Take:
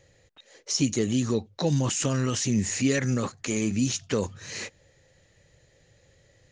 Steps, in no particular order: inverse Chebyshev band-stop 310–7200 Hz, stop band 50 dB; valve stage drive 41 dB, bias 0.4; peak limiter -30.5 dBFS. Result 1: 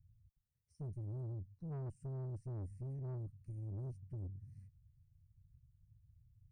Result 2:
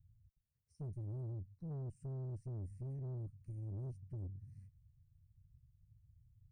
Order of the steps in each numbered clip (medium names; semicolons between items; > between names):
inverse Chebyshev band-stop > valve stage > peak limiter; inverse Chebyshev band-stop > peak limiter > valve stage